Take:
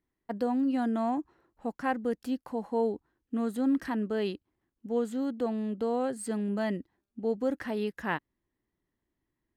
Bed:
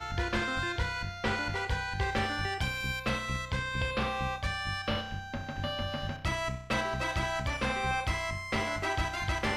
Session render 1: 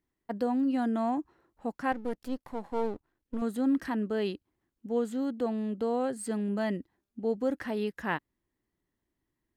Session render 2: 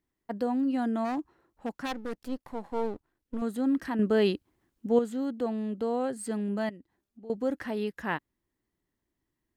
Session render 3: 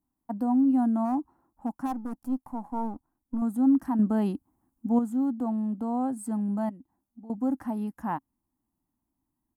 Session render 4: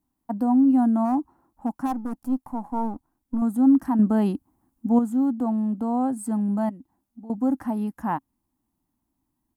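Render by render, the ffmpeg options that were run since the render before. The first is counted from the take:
-filter_complex "[0:a]asettb=1/sr,asplit=3[a][b][c];[a]atrim=end=1.924[d];[b]atrim=start=1.92:end=3.42,asetpts=PTS-STARTPTS,afade=t=in:d=0.004:c=qsin,afade=t=out:st=1.496:d=0.004:c=qsin,aeval=exprs='if(lt(val(0),0),0.251*val(0),val(0))':c=same[e];[c]atrim=start=3.416[f];[d][e]acrossfade=d=0.004:c1=hsin:c2=qsin[g];[g][f]acrossfade=d=0.004:c1=qsin:c2=hsin"
-filter_complex "[0:a]asplit=3[a][b][c];[a]afade=t=out:st=1.04:d=0.02[d];[b]aeval=exprs='0.0531*(abs(mod(val(0)/0.0531+3,4)-2)-1)':c=same,afade=t=in:st=1.04:d=0.02,afade=t=out:st=2.3:d=0.02[e];[c]afade=t=in:st=2.3:d=0.02[f];[d][e][f]amix=inputs=3:normalize=0,asettb=1/sr,asplit=3[g][h][i];[g]atrim=end=3.994[j];[h]atrim=start=3.99:end=4.99,asetpts=PTS-STARTPTS,afade=t=in:d=0.004:c=qsin,afade=t=out:st=0.996:d=0.004:c=qsin,acontrast=73[k];[i]atrim=start=4.986[l];[j][k]acrossfade=d=0.004:c1=hsin:c2=qsin[m];[m][l]acrossfade=d=0.004:c1=qsin:c2=hsin,asettb=1/sr,asplit=3[n][o][p];[n]atrim=end=6.694[q];[o]atrim=start=6.69:end=7.3,asetpts=PTS-STARTPTS,afade=t=in:d=0.004:c=qsin,afade=t=out:st=0.606:d=0.004:c=qsin,acompressor=threshold=-55dB:ratio=2:attack=3.2:release=140:knee=1:detection=peak[r];[p]atrim=start=7.296[s];[q][r]acrossfade=d=0.004:c1=hsin:c2=qsin[t];[t][s]acrossfade=d=0.004:c1=qsin:c2=hsin"
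-af "firequalizer=gain_entry='entry(160,0);entry(260,7);entry(420,-13);entry(810,6);entry(1800,-14);entry(3900,-19);entry(5600,-9);entry(10000,2)':delay=0.05:min_phase=1"
-af "volume=4.5dB"

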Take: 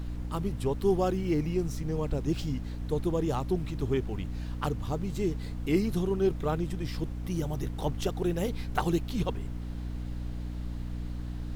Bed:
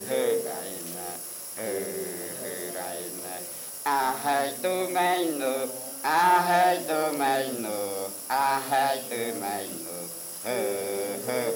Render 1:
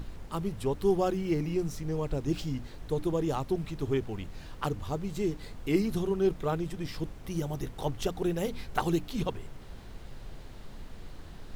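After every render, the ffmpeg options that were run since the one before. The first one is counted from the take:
-af "bandreject=f=60:t=h:w=6,bandreject=f=120:t=h:w=6,bandreject=f=180:t=h:w=6,bandreject=f=240:t=h:w=6,bandreject=f=300:t=h:w=6"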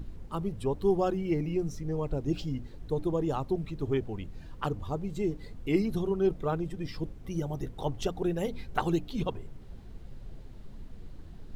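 -af "afftdn=nr=10:nf=-46"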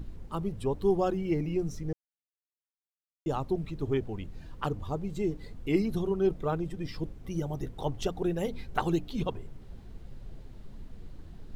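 -filter_complex "[0:a]asplit=3[a][b][c];[a]atrim=end=1.93,asetpts=PTS-STARTPTS,afade=t=out:st=1.926:d=0.004:c=hsin[d];[b]atrim=start=1.93:end=3.26,asetpts=PTS-STARTPTS,volume=0[e];[c]atrim=start=3.26,asetpts=PTS-STARTPTS,afade=t=in:d=0.004:c=hsin[f];[d][e][f]concat=n=3:v=0:a=1"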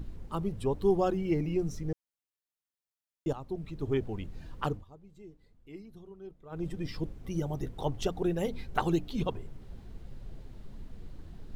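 -filter_complex "[0:a]asplit=4[a][b][c][d];[a]atrim=end=3.33,asetpts=PTS-STARTPTS,afade=t=out:st=3.326:d=0.004:c=hsin:silence=0.237137[e];[b]atrim=start=3.33:end=4.85,asetpts=PTS-STARTPTS,afade=t=in:d=0.68:silence=0.237137,afade=t=out:st=1.37:d=0.15:silence=0.1[f];[c]atrim=start=4.85:end=6.5,asetpts=PTS-STARTPTS,volume=-20dB[g];[d]atrim=start=6.5,asetpts=PTS-STARTPTS,afade=t=in:d=0.15:silence=0.1[h];[e][f][g][h]concat=n=4:v=0:a=1"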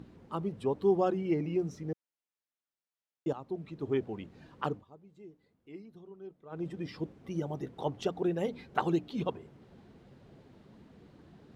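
-af "highpass=170,aemphasis=mode=reproduction:type=50kf"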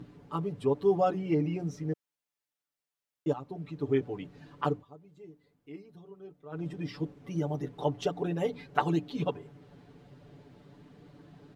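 -af "aecho=1:1:6.9:0.85"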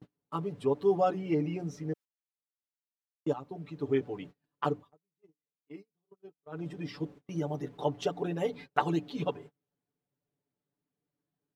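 -af "agate=range=-33dB:threshold=-45dB:ratio=16:detection=peak,lowshelf=f=140:g=-7"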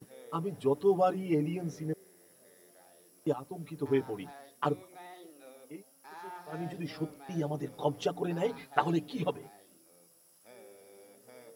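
-filter_complex "[1:a]volume=-25.5dB[a];[0:a][a]amix=inputs=2:normalize=0"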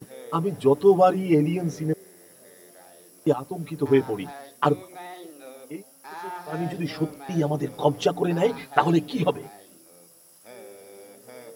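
-af "volume=9.5dB,alimiter=limit=-1dB:level=0:latency=1"

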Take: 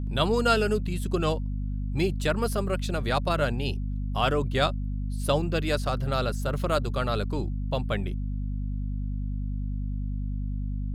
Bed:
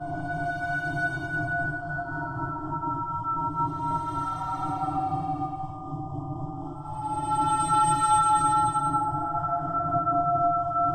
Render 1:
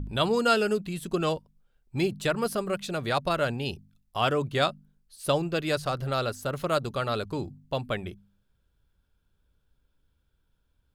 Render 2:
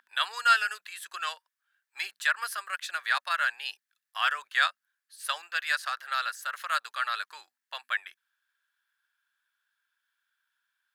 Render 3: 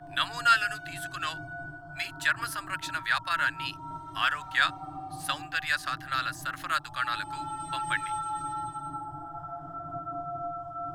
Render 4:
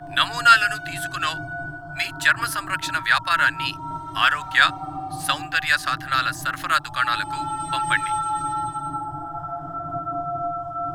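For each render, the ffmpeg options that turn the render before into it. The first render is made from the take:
-af "bandreject=f=50:t=h:w=4,bandreject=f=100:t=h:w=4,bandreject=f=150:t=h:w=4,bandreject=f=200:t=h:w=4,bandreject=f=250:t=h:w=4"
-af "highpass=f=1.1k:w=0.5412,highpass=f=1.1k:w=1.3066,equalizer=f=1.7k:t=o:w=0.39:g=13"
-filter_complex "[1:a]volume=-12dB[a];[0:a][a]amix=inputs=2:normalize=0"
-af "volume=8.5dB"

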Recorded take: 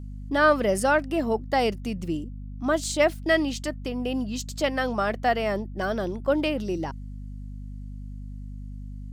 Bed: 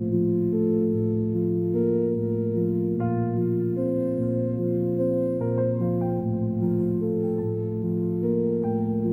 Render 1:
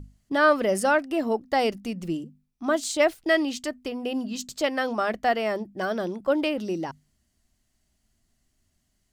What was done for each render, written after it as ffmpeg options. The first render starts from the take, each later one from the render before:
-af "bandreject=f=50:t=h:w=6,bandreject=f=100:t=h:w=6,bandreject=f=150:t=h:w=6,bandreject=f=200:t=h:w=6,bandreject=f=250:t=h:w=6"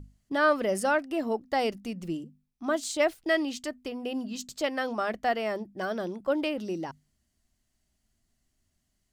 -af "volume=-4dB"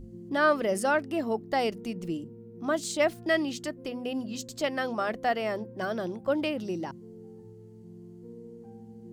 -filter_complex "[1:a]volume=-22dB[a];[0:a][a]amix=inputs=2:normalize=0"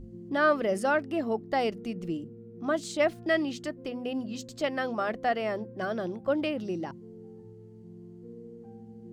-af "highshelf=f=6.1k:g=-10,bandreject=f=940:w=15"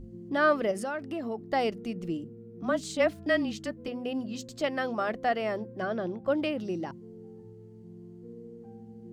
-filter_complex "[0:a]asettb=1/sr,asplit=3[a][b][c];[a]atrim=end=0.714[d];[b]atrim=start=0.71:end=1.53,asetpts=PTS-STARTPTS,afade=t=in:d=0.004:c=qsin,afade=t=out:st=0.816:d=0.004:c=qsin,acompressor=threshold=-30dB:ratio=5:attack=3.2:release=140:knee=1:detection=peak[e];[c]atrim=start=1.526[f];[d][e]acrossfade=d=0.004:c1=hsin:c2=qsin[g];[g][f]acrossfade=d=0.004:c1=qsin:c2=hsin,asettb=1/sr,asplit=3[h][i][j];[h]atrim=end=2.624[k];[i]atrim=start=2.62:end=3.88,asetpts=PTS-STARTPTS,afade=t=in:d=0.004:c=qsin,afade=t=out:st=1.256:d=0.004:c=qsin,afreqshift=-26[l];[j]atrim=start=3.876[m];[k][l]acrossfade=d=0.004:c1=hsin:c2=qsin[n];[n][m]acrossfade=d=0.004:c1=qsin:c2=hsin,asettb=1/sr,asplit=3[o][p][q];[o]atrim=end=5.814[r];[p]atrim=start=5.81:end=6.26,asetpts=PTS-STARTPTS,afade=t=in:d=0.004:c=qsin,afade=t=out:st=0.446:d=0.004:c=qsin,aemphasis=mode=reproduction:type=50fm[s];[q]atrim=start=6.256[t];[r][s]acrossfade=d=0.004:c1=hsin:c2=qsin[u];[u][t]acrossfade=d=0.004:c1=qsin:c2=hsin"

